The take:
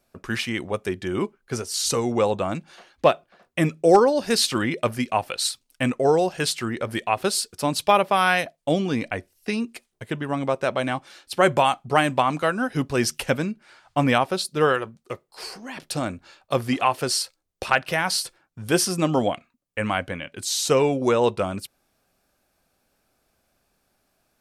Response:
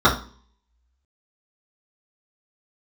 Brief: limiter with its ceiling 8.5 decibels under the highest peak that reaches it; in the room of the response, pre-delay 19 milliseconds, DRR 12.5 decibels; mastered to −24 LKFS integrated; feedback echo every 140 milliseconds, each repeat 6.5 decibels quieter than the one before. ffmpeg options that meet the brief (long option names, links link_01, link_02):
-filter_complex "[0:a]alimiter=limit=-13dB:level=0:latency=1,aecho=1:1:140|280|420|560|700|840:0.473|0.222|0.105|0.0491|0.0231|0.0109,asplit=2[link_01][link_02];[1:a]atrim=start_sample=2205,adelay=19[link_03];[link_02][link_03]afir=irnorm=-1:irlink=0,volume=-35.5dB[link_04];[link_01][link_04]amix=inputs=2:normalize=0,volume=0.5dB"